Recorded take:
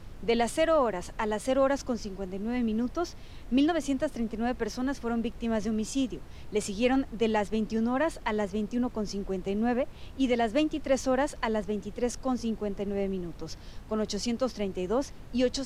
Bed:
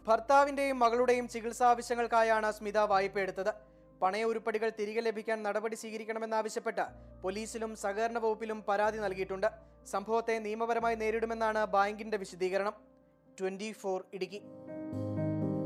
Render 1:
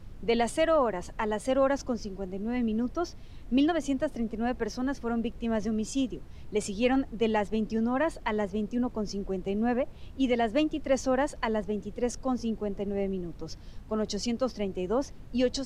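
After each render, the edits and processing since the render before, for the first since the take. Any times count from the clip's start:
broadband denoise 6 dB, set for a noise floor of −45 dBFS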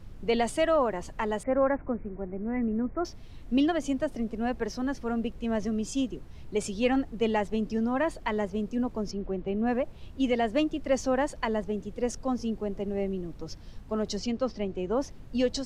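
0:01.43–0:03.05: Butterworth low-pass 2,300 Hz 72 dB per octave
0:09.11–0:09.67: low-pass filter 2,900 Hz
0:14.19–0:14.97: high-frequency loss of the air 79 metres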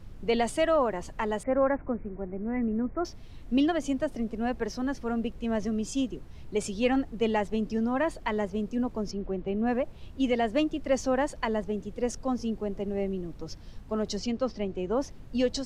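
no processing that can be heard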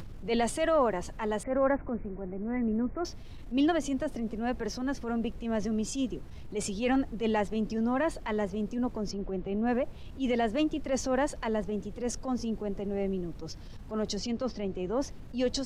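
upward compression, threshold −36 dBFS
transient designer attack −8 dB, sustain +2 dB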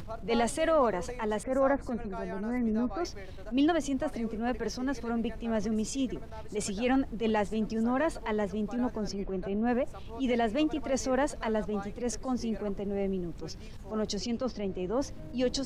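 mix in bed −14 dB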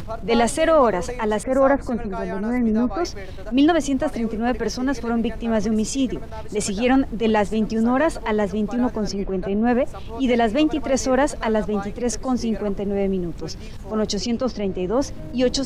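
level +9.5 dB

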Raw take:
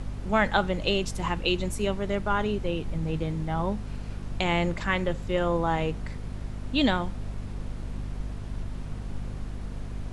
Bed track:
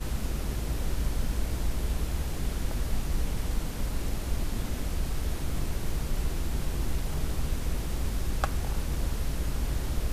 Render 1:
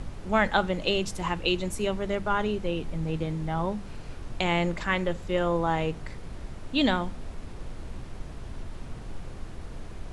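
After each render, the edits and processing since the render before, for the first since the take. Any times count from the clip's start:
hum removal 50 Hz, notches 5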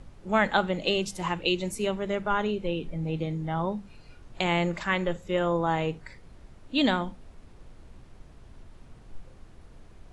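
noise reduction from a noise print 11 dB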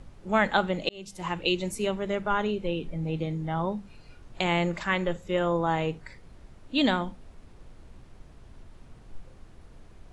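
0:00.89–0:01.40: fade in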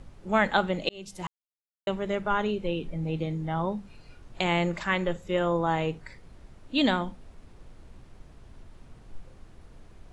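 0:01.27–0:01.87: silence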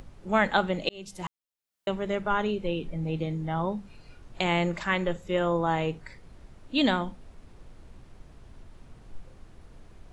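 upward compression, threshold −46 dBFS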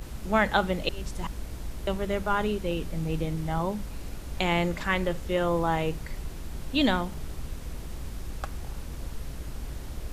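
mix in bed track −7 dB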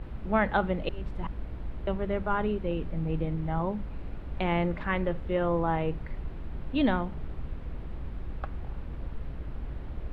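high-frequency loss of the air 490 metres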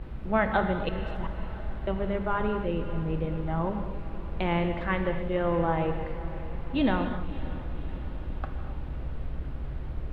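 feedback delay with all-pass diffusion 580 ms, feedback 62%, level −15.5 dB
reverb whose tail is shaped and stops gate 290 ms flat, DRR 6 dB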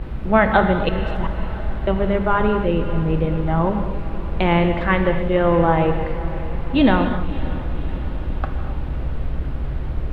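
level +10 dB
brickwall limiter −1 dBFS, peak gain reduction 1 dB

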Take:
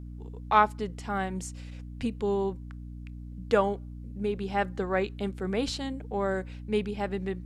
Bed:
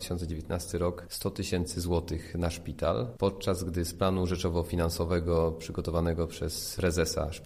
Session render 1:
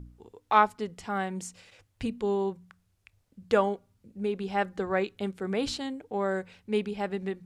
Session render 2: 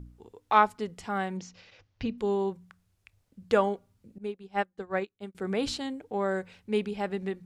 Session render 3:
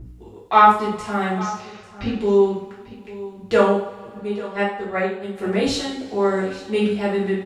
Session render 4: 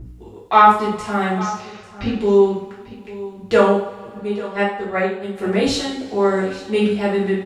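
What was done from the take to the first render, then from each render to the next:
hum removal 60 Hz, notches 5
0:01.37–0:02.18: Butterworth low-pass 6,100 Hz 48 dB per octave; 0:04.18–0:05.35: expander for the loud parts 2.5 to 1, over −42 dBFS
single-tap delay 844 ms −17 dB; coupled-rooms reverb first 0.54 s, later 3.1 s, from −22 dB, DRR −9 dB
level +2.5 dB; brickwall limiter −1 dBFS, peak gain reduction 2 dB

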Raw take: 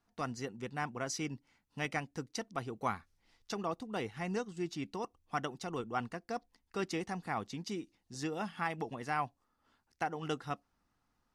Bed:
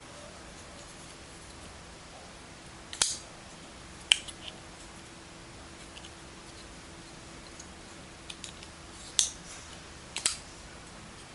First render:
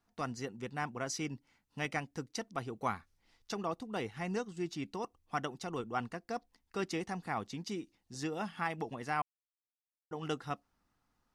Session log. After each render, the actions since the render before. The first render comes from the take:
0:09.22–0:10.11: silence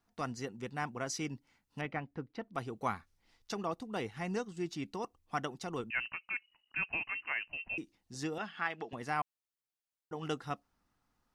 0:01.81–0:02.54: high-frequency loss of the air 410 metres
0:05.90–0:07.78: voice inversion scrambler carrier 2,900 Hz
0:08.38–0:08.93: loudspeaker in its box 270–6,400 Hz, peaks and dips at 290 Hz −5 dB, 540 Hz −5 dB, 900 Hz −5 dB, 1,600 Hz +5 dB, 3,000 Hz +4 dB, 5,700 Hz −7 dB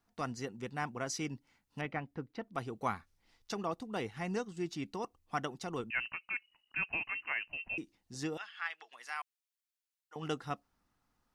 0:08.37–0:10.16: high-pass filter 1,500 Hz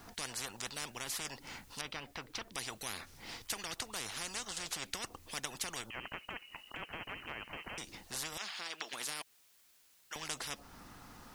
in parallel at −2 dB: downward compressor, threshold −45 dBFS, peak gain reduction 15 dB
on the sum: every bin compressed towards the loudest bin 10 to 1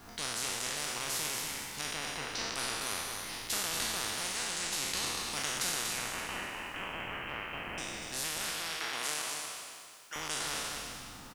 peak hold with a decay on every bin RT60 2.20 s
single-tap delay 240 ms −6 dB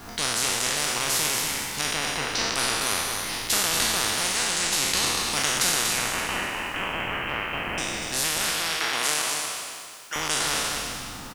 level +10.5 dB

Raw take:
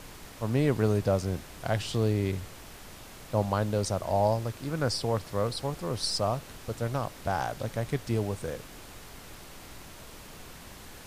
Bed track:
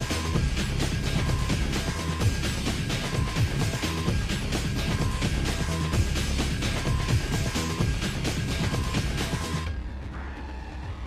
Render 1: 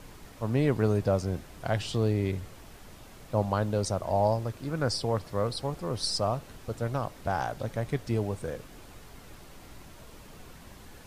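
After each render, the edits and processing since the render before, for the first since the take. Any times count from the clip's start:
broadband denoise 6 dB, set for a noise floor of −47 dBFS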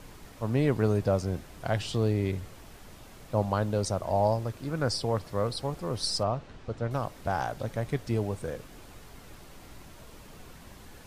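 0:06.23–0:06.91: high-frequency loss of the air 120 metres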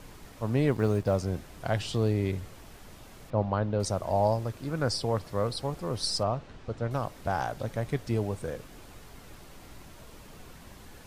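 0:00.71–0:01.16: mu-law and A-law mismatch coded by A
0:03.30–0:03.80: high-frequency loss of the air 230 metres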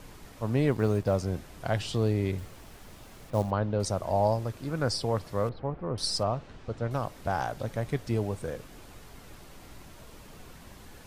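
0:02.38–0:03.51: log-companded quantiser 6 bits
0:05.49–0:05.98: Bessel low-pass filter 1,600 Hz, order 4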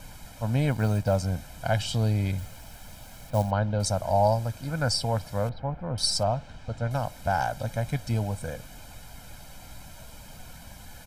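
high-shelf EQ 4,700 Hz +5.5 dB
comb filter 1.3 ms, depth 75%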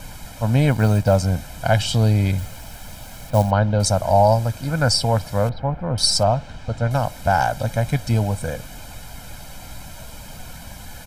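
level +8 dB
brickwall limiter −3 dBFS, peak gain reduction 2 dB

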